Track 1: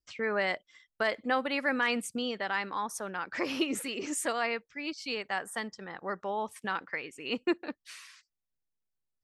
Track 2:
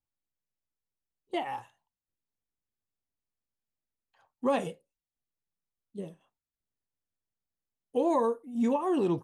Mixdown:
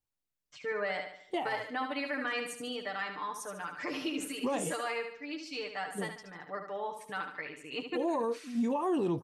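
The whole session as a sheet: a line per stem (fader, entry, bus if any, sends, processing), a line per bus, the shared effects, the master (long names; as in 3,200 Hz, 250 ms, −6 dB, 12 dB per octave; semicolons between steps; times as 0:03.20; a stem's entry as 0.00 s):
−7.0 dB, 0.45 s, no send, echo send −7.5 dB, comb filter 6.7 ms, depth 83%
+0.5 dB, 0.00 s, no send, no echo send, no processing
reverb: not used
echo: repeating echo 73 ms, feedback 44%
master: brickwall limiter −24 dBFS, peak gain reduction 9 dB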